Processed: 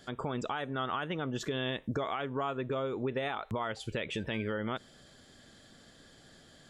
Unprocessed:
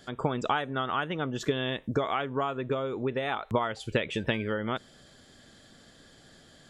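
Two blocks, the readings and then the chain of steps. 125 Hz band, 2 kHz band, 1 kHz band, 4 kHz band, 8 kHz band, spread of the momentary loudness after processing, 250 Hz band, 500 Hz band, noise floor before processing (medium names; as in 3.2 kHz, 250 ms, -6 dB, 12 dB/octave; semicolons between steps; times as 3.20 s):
-4.0 dB, -5.0 dB, -5.5 dB, -4.0 dB, -2.0 dB, 2 LU, -4.0 dB, -4.5 dB, -56 dBFS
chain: peak limiter -22 dBFS, peak gain reduction 10 dB; trim -2 dB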